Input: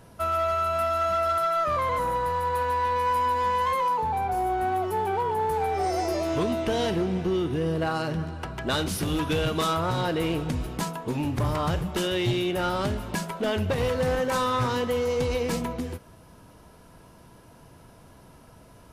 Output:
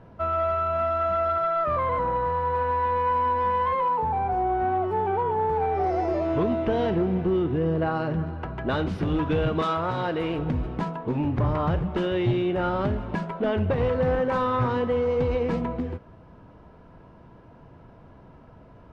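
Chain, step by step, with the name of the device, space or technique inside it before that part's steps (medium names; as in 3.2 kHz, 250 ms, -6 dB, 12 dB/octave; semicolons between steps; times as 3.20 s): phone in a pocket (low-pass 3 kHz 12 dB/octave; treble shelf 2.2 kHz -10.5 dB); 9.62–10.39 s: tilt EQ +2 dB/octave; trim +2.5 dB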